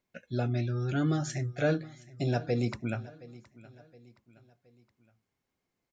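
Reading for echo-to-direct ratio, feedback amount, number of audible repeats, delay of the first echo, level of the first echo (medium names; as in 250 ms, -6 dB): -19.0 dB, 45%, 3, 719 ms, -20.0 dB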